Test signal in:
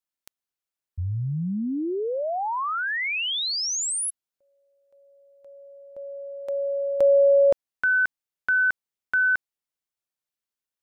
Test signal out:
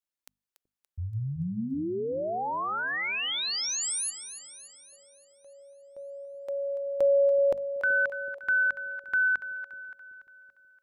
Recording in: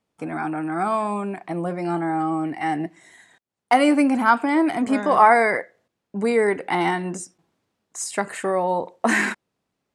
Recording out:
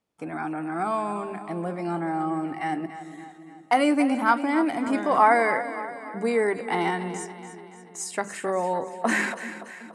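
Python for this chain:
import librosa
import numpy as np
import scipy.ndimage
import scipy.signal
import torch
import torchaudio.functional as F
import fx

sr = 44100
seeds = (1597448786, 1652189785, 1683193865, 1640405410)

p1 = fx.hum_notches(x, sr, base_hz=50, count=5)
p2 = p1 + fx.echo_split(p1, sr, split_hz=440.0, low_ms=378, high_ms=286, feedback_pct=52, wet_db=-12, dry=0)
y = p2 * 10.0 ** (-4.0 / 20.0)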